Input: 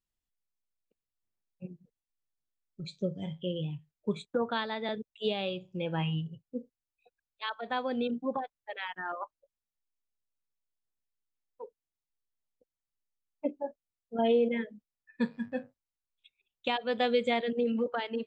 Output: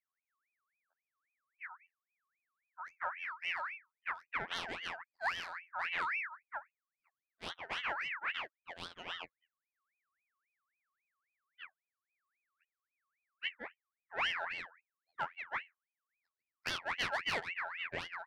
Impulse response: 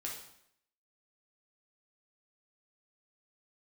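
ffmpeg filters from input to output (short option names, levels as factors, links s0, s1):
-af "afftfilt=real='hypot(re,im)*cos(PI*b)':imag='0':win_size=2048:overlap=0.75,adynamicsmooth=sensitivity=4.5:basefreq=740,aeval=exprs='val(0)*sin(2*PI*1800*n/s+1800*0.4/3.7*sin(2*PI*3.7*n/s))':c=same"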